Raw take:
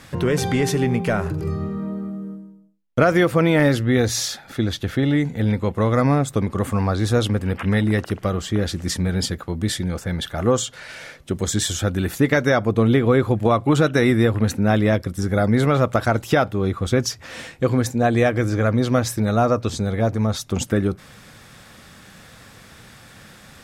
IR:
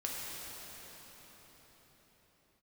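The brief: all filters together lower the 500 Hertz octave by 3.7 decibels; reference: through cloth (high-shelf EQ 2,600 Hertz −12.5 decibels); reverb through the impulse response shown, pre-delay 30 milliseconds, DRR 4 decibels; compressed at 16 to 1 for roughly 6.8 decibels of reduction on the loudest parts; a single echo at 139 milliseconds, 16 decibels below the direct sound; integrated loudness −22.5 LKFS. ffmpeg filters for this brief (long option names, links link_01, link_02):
-filter_complex "[0:a]equalizer=frequency=500:width_type=o:gain=-4,acompressor=threshold=-20dB:ratio=16,aecho=1:1:139:0.158,asplit=2[link_01][link_02];[1:a]atrim=start_sample=2205,adelay=30[link_03];[link_02][link_03]afir=irnorm=-1:irlink=0,volume=-7.5dB[link_04];[link_01][link_04]amix=inputs=2:normalize=0,highshelf=frequency=2600:gain=-12.5,volume=3dB"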